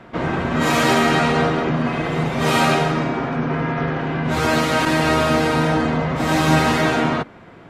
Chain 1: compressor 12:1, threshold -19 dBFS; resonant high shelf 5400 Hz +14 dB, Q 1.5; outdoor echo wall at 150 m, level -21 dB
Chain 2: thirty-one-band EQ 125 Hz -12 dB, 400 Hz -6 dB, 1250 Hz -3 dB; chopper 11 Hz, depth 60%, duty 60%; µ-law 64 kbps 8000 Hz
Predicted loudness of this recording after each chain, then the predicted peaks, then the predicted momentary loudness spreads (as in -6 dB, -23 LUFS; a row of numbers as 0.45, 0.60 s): -22.5, -22.0 LUFS; -8.0, -5.5 dBFS; 4, 7 LU